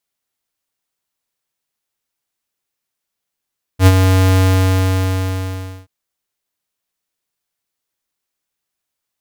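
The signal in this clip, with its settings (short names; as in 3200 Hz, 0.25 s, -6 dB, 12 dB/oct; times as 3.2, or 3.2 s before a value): ADSR square 94 Hz, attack 75 ms, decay 47 ms, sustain -6 dB, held 0.58 s, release 1.5 s -5 dBFS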